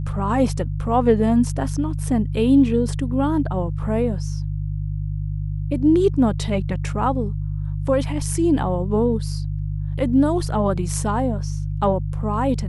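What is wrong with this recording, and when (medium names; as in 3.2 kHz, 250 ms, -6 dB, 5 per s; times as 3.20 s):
hum 50 Hz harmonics 3 -25 dBFS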